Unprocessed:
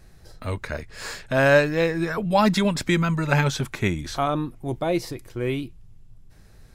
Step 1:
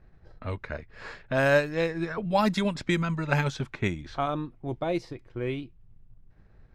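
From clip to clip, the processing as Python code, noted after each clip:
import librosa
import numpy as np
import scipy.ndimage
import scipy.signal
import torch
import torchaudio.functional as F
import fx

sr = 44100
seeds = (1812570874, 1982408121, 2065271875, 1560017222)

y = fx.transient(x, sr, attack_db=2, sustain_db=-4)
y = fx.env_lowpass(y, sr, base_hz=1900.0, full_db=-14.0)
y = F.gain(torch.from_numpy(y), -5.5).numpy()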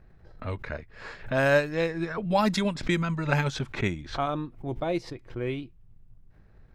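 y = fx.pre_swell(x, sr, db_per_s=150.0)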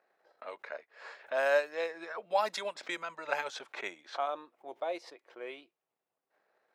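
y = fx.ladder_highpass(x, sr, hz=460.0, resonance_pct=30)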